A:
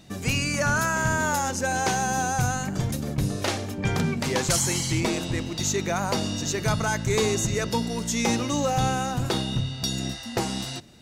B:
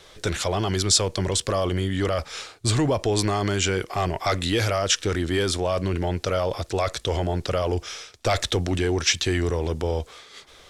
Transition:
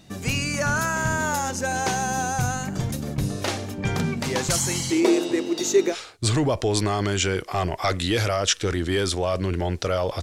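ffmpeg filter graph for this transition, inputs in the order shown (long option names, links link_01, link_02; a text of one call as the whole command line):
ffmpeg -i cue0.wav -i cue1.wav -filter_complex "[0:a]asettb=1/sr,asplit=3[link_01][link_02][link_03];[link_01]atrim=end=4.904[link_04];[link_02]atrim=start=4.9:end=5.96,asetpts=PTS-STARTPTS,afade=type=in:duration=0.004:curve=qsin,afade=type=out:start_time=1.056:duration=0.004:curve=qsin,highpass=frequency=360:width_type=q:width=4.3[link_05];[link_03]atrim=start=5.956[link_06];[link_04][link_05]acrossfade=duration=0.004:curve1=hsin:curve2=qsin[link_07];[link_07][link_06]acrossfade=duration=0.004:curve1=qsin:curve2=hsin,apad=whole_dur=10.22,atrim=end=10.22,atrim=end=5.96,asetpts=PTS-STARTPTS[link_08];[1:a]atrim=start=2.3:end=6.64,asetpts=PTS-STARTPTS[link_09];[link_08][link_09]acrossfade=duration=0.08:curve1=tri:curve2=tri" out.wav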